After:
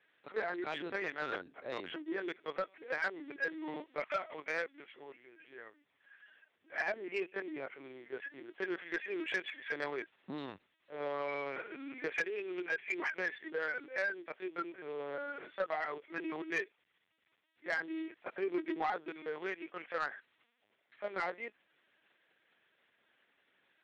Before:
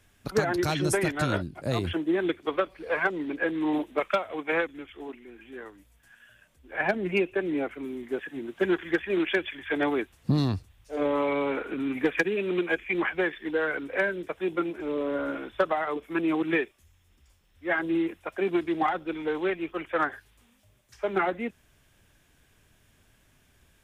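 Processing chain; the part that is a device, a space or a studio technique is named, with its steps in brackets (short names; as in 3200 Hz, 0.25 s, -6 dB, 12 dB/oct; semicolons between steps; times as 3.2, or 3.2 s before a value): 18.24–19.09 low shelf 410 Hz +8.5 dB; talking toy (LPC vocoder at 8 kHz pitch kept; HPF 420 Hz 12 dB/oct; bell 1900 Hz +5 dB 0.55 oct; soft clip -17.5 dBFS, distortion -17 dB); gain -8 dB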